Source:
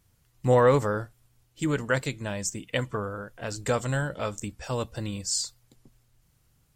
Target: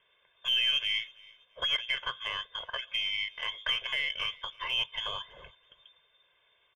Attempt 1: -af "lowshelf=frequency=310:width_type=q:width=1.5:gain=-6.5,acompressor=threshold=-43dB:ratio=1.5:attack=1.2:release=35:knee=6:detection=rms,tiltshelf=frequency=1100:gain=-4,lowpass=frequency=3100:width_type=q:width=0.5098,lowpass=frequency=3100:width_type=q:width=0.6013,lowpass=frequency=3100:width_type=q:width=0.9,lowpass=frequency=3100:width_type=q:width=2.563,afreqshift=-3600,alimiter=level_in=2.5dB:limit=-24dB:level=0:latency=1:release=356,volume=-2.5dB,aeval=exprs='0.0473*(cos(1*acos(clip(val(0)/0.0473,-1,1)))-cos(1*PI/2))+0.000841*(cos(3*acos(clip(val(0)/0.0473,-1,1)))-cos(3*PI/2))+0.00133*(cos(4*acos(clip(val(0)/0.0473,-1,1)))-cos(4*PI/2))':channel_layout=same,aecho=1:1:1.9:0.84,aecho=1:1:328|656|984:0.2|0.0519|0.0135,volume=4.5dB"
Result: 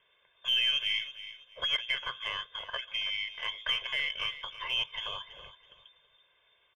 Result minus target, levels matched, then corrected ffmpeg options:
echo-to-direct +10.5 dB; downward compressor: peak gain reduction +3.5 dB
-af "lowshelf=frequency=310:width_type=q:width=1.5:gain=-6.5,acompressor=threshold=-33dB:ratio=1.5:attack=1.2:release=35:knee=6:detection=rms,tiltshelf=frequency=1100:gain=-4,lowpass=frequency=3100:width_type=q:width=0.5098,lowpass=frequency=3100:width_type=q:width=0.6013,lowpass=frequency=3100:width_type=q:width=0.9,lowpass=frequency=3100:width_type=q:width=2.563,afreqshift=-3600,alimiter=level_in=2.5dB:limit=-24dB:level=0:latency=1:release=356,volume=-2.5dB,aeval=exprs='0.0473*(cos(1*acos(clip(val(0)/0.0473,-1,1)))-cos(1*PI/2))+0.000841*(cos(3*acos(clip(val(0)/0.0473,-1,1)))-cos(3*PI/2))+0.00133*(cos(4*acos(clip(val(0)/0.0473,-1,1)))-cos(4*PI/2))':channel_layout=same,aecho=1:1:1.9:0.84,aecho=1:1:328|656:0.0596|0.0155,volume=4.5dB"

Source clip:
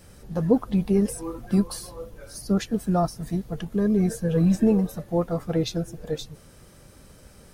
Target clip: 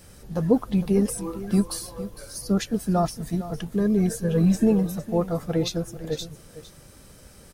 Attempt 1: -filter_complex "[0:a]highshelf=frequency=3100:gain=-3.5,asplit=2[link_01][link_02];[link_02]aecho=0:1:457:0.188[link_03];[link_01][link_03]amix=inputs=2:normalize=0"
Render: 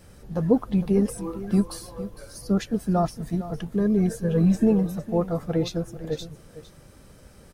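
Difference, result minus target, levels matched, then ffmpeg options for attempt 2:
8,000 Hz band −6.5 dB
-filter_complex "[0:a]highshelf=frequency=3100:gain=4,asplit=2[link_01][link_02];[link_02]aecho=0:1:457:0.188[link_03];[link_01][link_03]amix=inputs=2:normalize=0"

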